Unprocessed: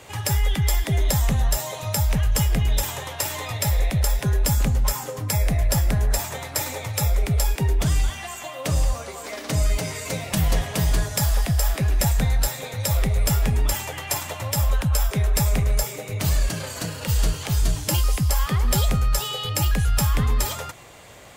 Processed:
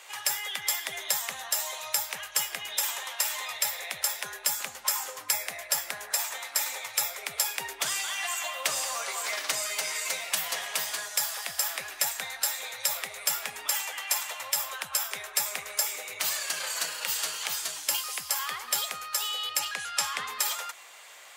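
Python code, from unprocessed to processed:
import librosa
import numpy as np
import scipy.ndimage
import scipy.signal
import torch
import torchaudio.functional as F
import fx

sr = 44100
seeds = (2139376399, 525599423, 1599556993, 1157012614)

y = fx.lowpass(x, sr, hz=8300.0, slope=12, at=(19.59, 20.28))
y = scipy.signal.sosfilt(scipy.signal.butter(2, 1100.0, 'highpass', fs=sr, output='sos'), y)
y = fx.rider(y, sr, range_db=10, speed_s=0.5)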